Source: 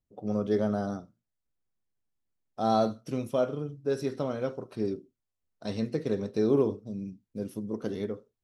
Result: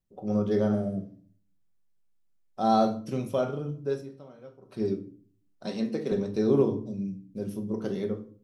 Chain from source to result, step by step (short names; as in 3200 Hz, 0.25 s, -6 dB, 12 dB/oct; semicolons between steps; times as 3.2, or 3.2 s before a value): 0.72–1.22 spectral repair 710–6800 Hz both; 3.85–4.79 dip -18.5 dB, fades 0.18 s; 5.66–6.12 HPF 180 Hz 24 dB/oct; shoebox room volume 390 m³, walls furnished, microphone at 1.1 m